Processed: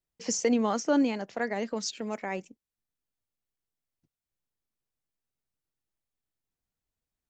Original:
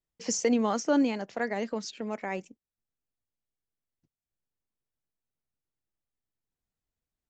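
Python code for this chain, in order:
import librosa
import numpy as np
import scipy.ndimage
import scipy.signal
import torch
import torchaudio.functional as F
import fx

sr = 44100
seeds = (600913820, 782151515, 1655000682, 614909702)

y = fx.high_shelf(x, sr, hz=fx.line((1.76, 4500.0), (2.19, 6200.0)), db=11.5, at=(1.76, 2.19), fade=0.02)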